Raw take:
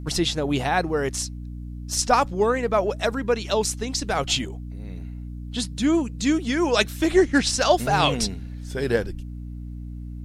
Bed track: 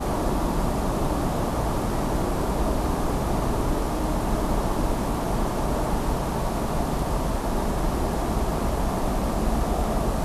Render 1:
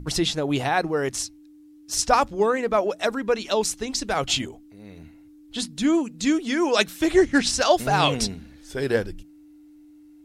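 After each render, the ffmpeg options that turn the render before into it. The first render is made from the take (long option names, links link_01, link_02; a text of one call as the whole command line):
ffmpeg -i in.wav -af "bandreject=frequency=60:width_type=h:width=6,bandreject=frequency=120:width_type=h:width=6,bandreject=frequency=180:width_type=h:width=6,bandreject=frequency=240:width_type=h:width=6" out.wav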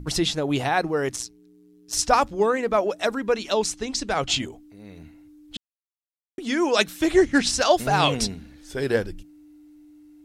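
ffmpeg -i in.wav -filter_complex "[0:a]asettb=1/sr,asplit=3[link_01][link_02][link_03];[link_01]atrim=end=1.164[link_04];[link_02]atrim=start=1.16:end=1.93,asetpts=PTS-STARTPTS,afade=type=in:duration=0.004:curve=qsin,afade=type=out:start_time=0.766:duration=0.004:curve=qsin,tremolo=f=120:d=0.919[link_05];[link_03]atrim=start=1.926[link_06];[link_04][link_05]acrossfade=duration=0.004:curve1=hsin:curve2=qsin[link_07];[link_07][link_06]acrossfade=duration=0.004:curve1=qsin:curve2=hsin,asettb=1/sr,asplit=3[link_08][link_09][link_10];[link_08]atrim=end=3.574[link_11];[link_09]atrim=start=3.57:end=4.42,asetpts=PTS-STARTPTS,afade=type=in:duration=0.004:curve=qsin,afade=type=out:start_time=0.846:duration=0.004:curve=qsin,lowpass=8900[link_12];[link_10]atrim=start=4.416[link_13];[link_11][link_12]acrossfade=duration=0.004:curve1=hsin:curve2=qsin[link_14];[link_14][link_13]acrossfade=duration=0.004:curve1=qsin:curve2=hsin,asplit=3[link_15][link_16][link_17];[link_15]atrim=end=5.57,asetpts=PTS-STARTPTS,afade=type=out:start_time=5.566:duration=0.004:curve=hsin[link_18];[link_16]atrim=start=5.57:end=6.38,asetpts=PTS-STARTPTS,volume=0[link_19];[link_17]atrim=start=6.38,asetpts=PTS-STARTPTS,afade=type=in:duration=0.004:curve=hsin[link_20];[link_18][link_19][link_20]concat=n=3:v=0:a=1" out.wav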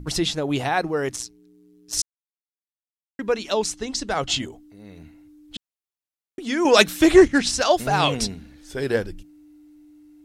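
ffmpeg -i in.wav -filter_complex "[0:a]asettb=1/sr,asplit=3[link_01][link_02][link_03];[link_01]atrim=end=3.734[link_04];[link_02]atrim=start=3.73:end=4.93,asetpts=PTS-STARTPTS,afade=type=in:duration=0.004:curve=qsin,afade=type=out:start_time=1.196:duration=0.004:curve=qsin,bandreject=frequency=2400:width=12[link_05];[link_03]atrim=start=4.926[link_06];[link_04][link_05]acrossfade=duration=0.004:curve1=hsin:curve2=qsin[link_07];[link_07][link_06]acrossfade=duration=0.004:curve1=qsin:curve2=hsin,asettb=1/sr,asplit=3[link_08][link_09][link_10];[link_08]atrim=end=6.654[link_11];[link_09]atrim=start=6.65:end=7.28,asetpts=PTS-STARTPTS,afade=type=in:duration=0.004:curve=qsin,afade=type=out:start_time=0.626:duration=0.004:curve=qsin,acontrast=83[link_12];[link_10]atrim=start=7.276[link_13];[link_11][link_12]acrossfade=duration=0.004:curve1=hsin:curve2=qsin[link_14];[link_14][link_13]acrossfade=duration=0.004:curve1=qsin:curve2=hsin,asplit=3[link_15][link_16][link_17];[link_15]atrim=end=2.02,asetpts=PTS-STARTPTS,afade=type=out:start_time=2.016:duration=0.004:curve=hsin[link_18];[link_16]atrim=start=2.02:end=3.19,asetpts=PTS-STARTPTS,volume=0[link_19];[link_17]atrim=start=3.19,asetpts=PTS-STARTPTS,afade=type=in:duration=0.004:curve=hsin[link_20];[link_18][link_19][link_20]concat=n=3:v=0:a=1" out.wav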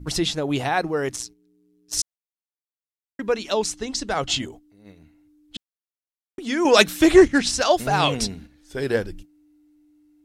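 ffmpeg -i in.wav -af "agate=range=-8dB:threshold=-41dB:ratio=16:detection=peak" out.wav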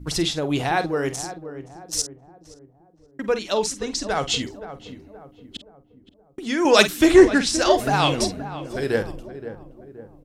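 ffmpeg -i in.wav -filter_complex "[0:a]asplit=2[link_01][link_02];[link_02]adelay=48,volume=-12dB[link_03];[link_01][link_03]amix=inputs=2:normalize=0,asplit=2[link_04][link_05];[link_05]adelay=523,lowpass=frequency=1000:poles=1,volume=-11dB,asplit=2[link_06][link_07];[link_07]adelay=523,lowpass=frequency=1000:poles=1,volume=0.5,asplit=2[link_08][link_09];[link_09]adelay=523,lowpass=frequency=1000:poles=1,volume=0.5,asplit=2[link_10][link_11];[link_11]adelay=523,lowpass=frequency=1000:poles=1,volume=0.5,asplit=2[link_12][link_13];[link_13]adelay=523,lowpass=frequency=1000:poles=1,volume=0.5[link_14];[link_04][link_06][link_08][link_10][link_12][link_14]amix=inputs=6:normalize=0" out.wav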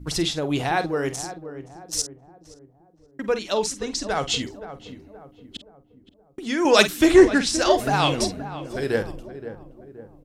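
ffmpeg -i in.wav -af "volume=-1dB" out.wav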